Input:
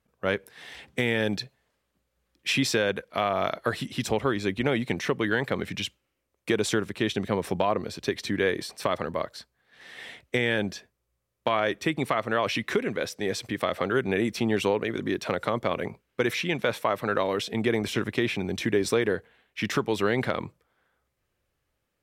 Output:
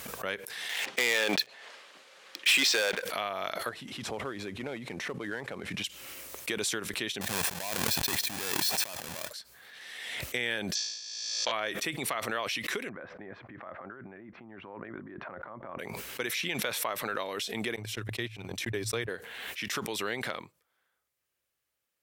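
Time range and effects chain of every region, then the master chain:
0.69–3.02 s: band-pass 420–4100 Hz + waveshaping leveller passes 3
3.69–5.84 s: CVSD coder 64 kbps + low-pass 1.1 kHz 6 dB/octave
7.21–9.30 s: square wave that keeps the level + comb 1.2 ms, depth 34% + compressor with a negative ratio -34 dBFS
10.75–11.52 s: steep low-pass 6.7 kHz + tone controls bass -10 dB, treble +13 dB + flutter echo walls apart 3.1 m, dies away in 1.1 s
12.89–15.79 s: peaking EQ 450 Hz -11.5 dB 0.26 oct + compressor with a negative ratio -33 dBFS + low-pass 1.5 kHz 24 dB/octave
17.76–19.09 s: gate -26 dBFS, range -36 dB + peaking EQ 110 Hz +14.5 dB 0.46 oct
whole clip: tilt EQ +3 dB/octave; swell ahead of each attack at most 31 dB/s; trim -8 dB

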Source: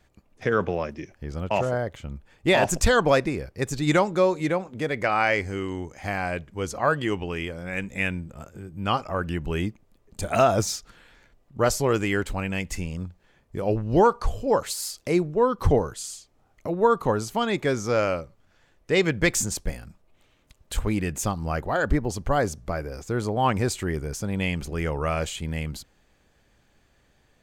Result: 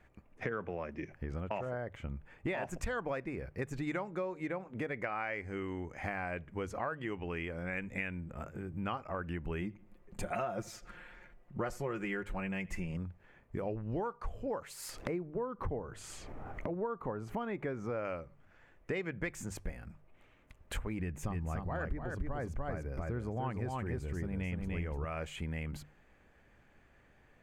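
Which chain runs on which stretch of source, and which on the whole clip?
9.61–12.97 s: comb 5.6 ms, depth 54% + filtered feedback delay 84 ms, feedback 32%, low-pass 3.7 kHz, level -23.5 dB
14.89–18.05 s: treble shelf 2.5 kHz -12 dB + upward compressor, threshold -24 dBFS
20.99–25.05 s: bass shelf 190 Hz +10 dB + band-stop 1.4 kHz, Q 24 + delay 296 ms -3 dB
whole clip: resonant high shelf 3 kHz -9.5 dB, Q 1.5; hum notches 50/100/150 Hz; compression 6:1, threshold -34 dBFS; trim -1 dB

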